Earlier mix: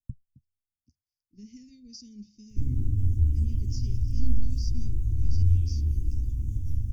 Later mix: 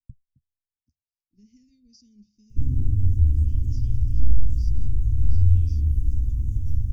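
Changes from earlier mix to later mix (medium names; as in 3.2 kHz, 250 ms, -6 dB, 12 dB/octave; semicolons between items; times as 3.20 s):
speech -10.0 dB; master: add bass shelf 130 Hz +6 dB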